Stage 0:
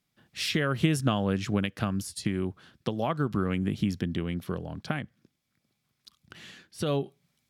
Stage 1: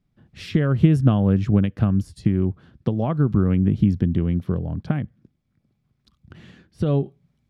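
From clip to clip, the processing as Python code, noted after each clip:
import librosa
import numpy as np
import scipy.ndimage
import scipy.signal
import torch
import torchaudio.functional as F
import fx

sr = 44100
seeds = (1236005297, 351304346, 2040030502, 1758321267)

y = fx.tilt_eq(x, sr, slope=-4.0)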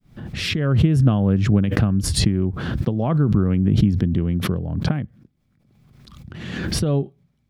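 y = fx.fade_in_head(x, sr, length_s=1.15)
y = fx.pre_swell(y, sr, db_per_s=35.0)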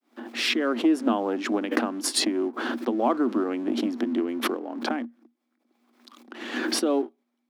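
y = fx.leveller(x, sr, passes=1)
y = scipy.signal.sosfilt(scipy.signal.cheby1(6, 6, 230.0, 'highpass', fs=sr, output='sos'), y)
y = y * 10.0 ** (1.5 / 20.0)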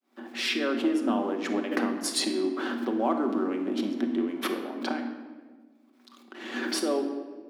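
y = fx.room_shoebox(x, sr, seeds[0], volume_m3=1300.0, walls='mixed', distance_m=1.1)
y = y * 10.0 ** (-4.5 / 20.0)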